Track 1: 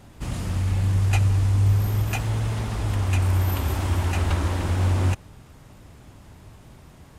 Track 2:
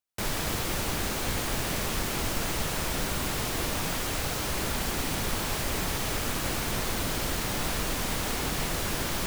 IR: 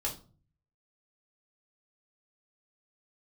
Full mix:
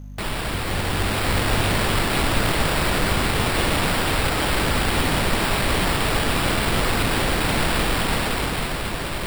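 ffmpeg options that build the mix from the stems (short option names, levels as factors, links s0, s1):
-filter_complex "[0:a]aecho=1:1:6.9:0.94,volume=0.266[s0];[1:a]dynaudnorm=f=160:g=13:m=2,aeval=exprs='val(0)+0.0126*(sin(2*PI*50*n/s)+sin(2*PI*2*50*n/s)/2+sin(2*PI*3*50*n/s)/3+sin(2*PI*4*50*n/s)/4+sin(2*PI*5*50*n/s)/5)':c=same,volume=1.41[s1];[s0][s1]amix=inputs=2:normalize=0,acrusher=samples=7:mix=1:aa=0.000001"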